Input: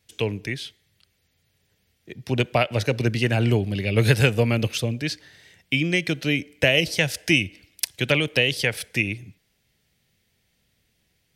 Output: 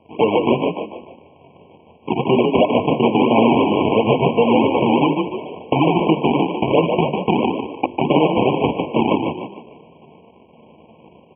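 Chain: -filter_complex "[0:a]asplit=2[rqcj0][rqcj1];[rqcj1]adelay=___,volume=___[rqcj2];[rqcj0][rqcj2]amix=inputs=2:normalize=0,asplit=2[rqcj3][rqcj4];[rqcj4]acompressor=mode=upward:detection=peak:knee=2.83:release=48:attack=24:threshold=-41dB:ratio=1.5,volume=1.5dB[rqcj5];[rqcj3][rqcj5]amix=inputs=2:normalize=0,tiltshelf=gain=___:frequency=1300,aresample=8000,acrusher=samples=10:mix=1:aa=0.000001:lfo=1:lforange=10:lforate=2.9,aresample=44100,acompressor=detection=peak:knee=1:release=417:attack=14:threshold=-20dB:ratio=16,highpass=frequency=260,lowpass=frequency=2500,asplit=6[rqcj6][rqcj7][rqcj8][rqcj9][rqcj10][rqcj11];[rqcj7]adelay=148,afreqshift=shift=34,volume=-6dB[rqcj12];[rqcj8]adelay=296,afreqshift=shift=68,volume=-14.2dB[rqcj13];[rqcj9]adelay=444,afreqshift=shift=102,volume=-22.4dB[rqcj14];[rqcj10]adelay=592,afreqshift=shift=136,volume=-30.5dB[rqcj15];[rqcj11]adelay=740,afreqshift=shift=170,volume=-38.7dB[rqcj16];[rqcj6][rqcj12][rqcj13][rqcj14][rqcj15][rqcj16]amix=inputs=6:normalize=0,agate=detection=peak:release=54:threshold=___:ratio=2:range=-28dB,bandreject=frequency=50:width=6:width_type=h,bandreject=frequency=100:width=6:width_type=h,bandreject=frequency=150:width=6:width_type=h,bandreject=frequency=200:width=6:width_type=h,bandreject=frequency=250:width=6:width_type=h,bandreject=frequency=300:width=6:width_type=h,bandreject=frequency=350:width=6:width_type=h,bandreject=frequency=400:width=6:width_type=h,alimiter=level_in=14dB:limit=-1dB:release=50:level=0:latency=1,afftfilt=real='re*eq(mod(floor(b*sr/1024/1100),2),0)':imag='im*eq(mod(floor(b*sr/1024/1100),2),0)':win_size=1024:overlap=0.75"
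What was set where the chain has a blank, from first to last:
13, -4dB, 5, -57dB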